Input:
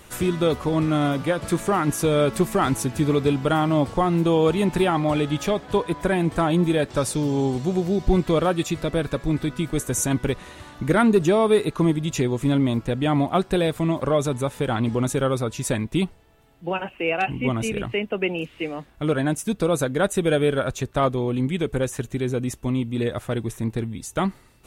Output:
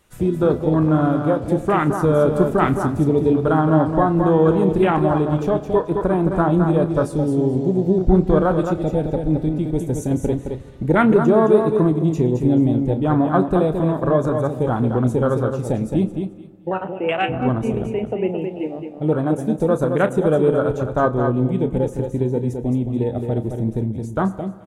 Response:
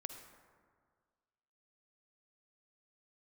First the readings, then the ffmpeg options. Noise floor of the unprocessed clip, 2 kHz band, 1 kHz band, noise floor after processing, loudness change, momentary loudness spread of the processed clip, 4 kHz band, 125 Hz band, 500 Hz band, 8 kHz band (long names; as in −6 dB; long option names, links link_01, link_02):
−50 dBFS, −1.0 dB, +3.5 dB, −34 dBFS, +4.0 dB, 8 LU, can't be measured, +4.5 dB, +4.5 dB, below −10 dB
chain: -filter_complex "[0:a]aecho=1:1:217|434|651:0.501|0.12|0.0289,afwtdn=0.0562,asplit=2[link_01][link_02];[1:a]atrim=start_sample=2205,adelay=32[link_03];[link_02][link_03]afir=irnorm=-1:irlink=0,volume=-8dB[link_04];[link_01][link_04]amix=inputs=2:normalize=0,volume=3dB"